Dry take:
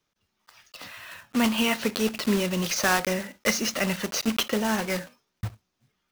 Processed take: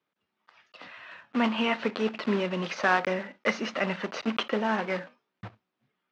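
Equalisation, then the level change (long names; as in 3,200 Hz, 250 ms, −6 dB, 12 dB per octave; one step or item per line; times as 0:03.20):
dynamic equaliser 1,000 Hz, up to +3 dB, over −41 dBFS, Q 0.84
band-pass filter 200–3,100 Hz
high-frequency loss of the air 71 metres
−1.5 dB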